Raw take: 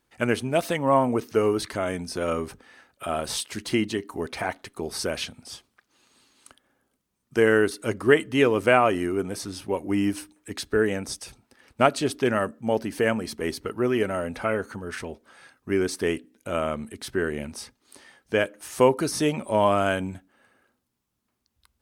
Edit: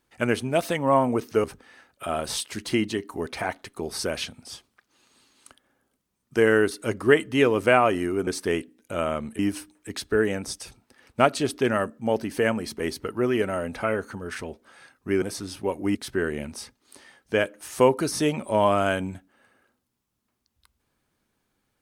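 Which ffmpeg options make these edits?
-filter_complex "[0:a]asplit=6[s0][s1][s2][s3][s4][s5];[s0]atrim=end=1.442[s6];[s1]atrim=start=2.438:end=9.272[s7];[s2]atrim=start=15.828:end=16.952[s8];[s3]atrim=start=9.998:end=15.832[s9];[s4]atrim=start=9.268:end=10.002[s10];[s5]atrim=start=16.948[s11];[s6][s7]acrossfade=d=0.004:c1=hsin:c2=hsin[s12];[s12][s8]acrossfade=d=0.004:c1=hsin:c2=hsin[s13];[s13][s9]acrossfade=d=0.004:c1=hsin:c2=hsin[s14];[s14][s10]acrossfade=d=0.004:c1=hsin:c2=hsin[s15];[s15][s11]acrossfade=d=0.004:c1=hsin:c2=hsin"

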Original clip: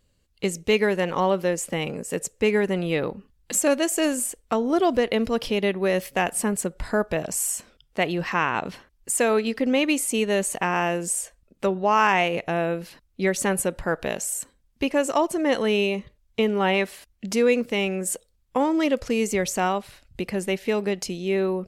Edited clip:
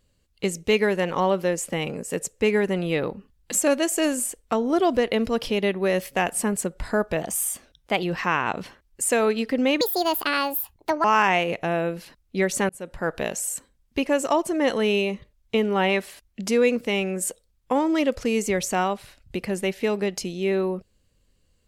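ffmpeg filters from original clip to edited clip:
-filter_complex "[0:a]asplit=6[s0][s1][s2][s3][s4][s5];[s0]atrim=end=7.214[s6];[s1]atrim=start=7.21:end=8.11,asetpts=PTS-STARTPTS,asetrate=48510,aresample=44100[s7];[s2]atrim=start=8.106:end=9.894[s8];[s3]atrim=start=9.89:end=11.89,asetpts=PTS-STARTPTS,asetrate=71442,aresample=44100,atrim=end_sample=54444,asetpts=PTS-STARTPTS[s9];[s4]atrim=start=11.886:end=13.54,asetpts=PTS-STARTPTS,afade=t=out:st=1.65:d=0.004:c=hsin[s10];[s5]atrim=start=13.54,asetpts=PTS-STARTPTS,afade=t=in:d=0.43[s11];[s6][s7]acrossfade=d=0.004:c1=hsin:c2=hsin[s12];[s12][s8]acrossfade=d=0.004:c1=hsin:c2=hsin[s13];[s13][s9]acrossfade=d=0.004:c1=hsin:c2=hsin[s14];[s10][s11]concat=n=2:v=0:a=1[s15];[s14][s15]acrossfade=d=0.004:c1=hsin:c2=hsin"

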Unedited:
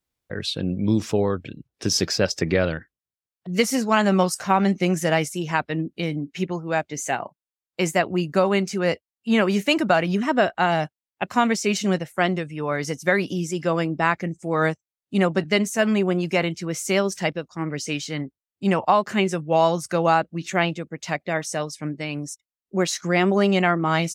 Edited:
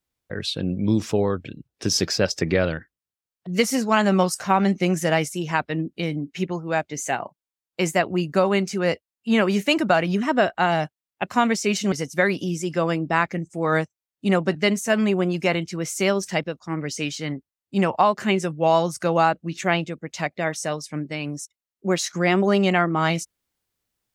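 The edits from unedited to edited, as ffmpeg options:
-filter_complex "[0:a]asplit=2[s0][s1];[s0]atrim=end=11.922[s2];[s1]atrim=start=12.808[s3];[s2][s3]acrossfade=d=0.004:c1=hsin:c2=hsin"

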